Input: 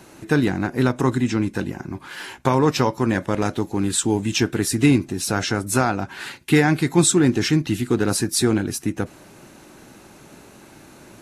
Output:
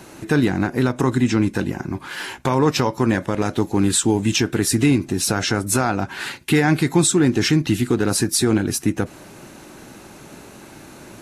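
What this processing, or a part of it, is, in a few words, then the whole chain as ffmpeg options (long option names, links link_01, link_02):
clipper into limiter: -af "asoftclip=type=hard:threshold=-6dB,alimiter=limit=-12dB:level=0:latency=1:release=146,volume=4.5dB"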